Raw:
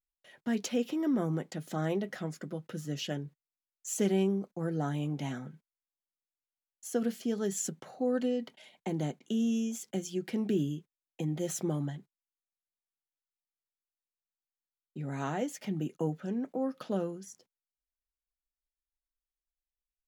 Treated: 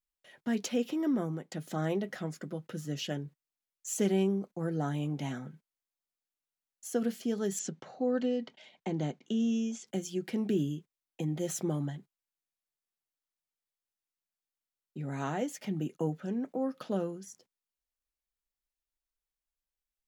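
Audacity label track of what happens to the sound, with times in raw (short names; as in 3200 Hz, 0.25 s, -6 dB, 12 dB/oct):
1.100000	1.510000	fade out, to -10 dB
7.590000	9.870000	LPF 6600 Hz 24 dB/oct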